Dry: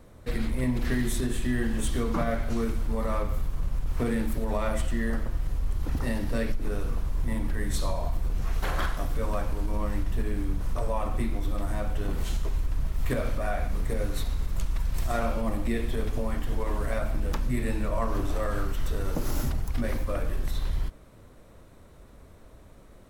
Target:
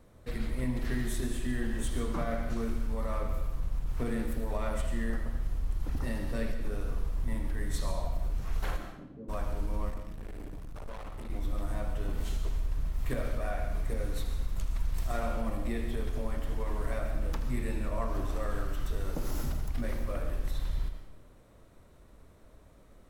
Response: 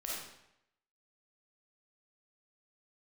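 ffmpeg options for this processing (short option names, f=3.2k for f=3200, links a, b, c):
-filter_complex "[0:a]asplit=3[a][b][c];[a]afade=t=out:st=8.76:d=0.02[d];[b]asuperpass=centerf=240:order=4:qfactor=1.1,afade=t=in:st=8.76:d=0.02,afade=t=out:st=9.28:d=0.02[e];[c]afade=t=in:st=9.28:d=0.02[f];[d][e][f]amix=inputs=3:normalize=0,asettb=1/sr,asplit=3[g][h][i];[g]atrim=end=9.894[j];[h]atrim=start=9.89:end=11.3,asetpts=PTS-STARTPTS,afade=t=in:d=0.004:c=qsin,afade=t=out:st=1.406:d=0.004:c=qsin,asoftclip=type=hard:threshold=-34.5dB[k];[i]atrim=start=11.296[l];[j][k]acrossfade=d=0.004:c1=hsin:c2=qsin[m];[m][l]acrossfade=d=0.004:c1=qsin:c2=hsin,asplit=2[n][o];[1:a]atrim=start_sample=2205,adelay=79[p];[o][p]afir=irnorm=-1:irlink=0,volume=-8dB[q];[n][q]amix=inputs=2:normalize=0,volume=-6.5dB"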